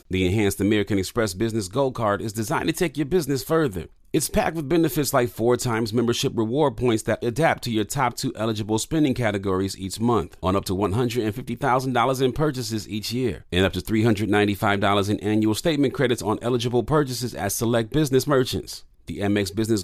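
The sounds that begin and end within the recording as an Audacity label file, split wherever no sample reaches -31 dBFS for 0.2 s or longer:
4.140000	18.770000	sound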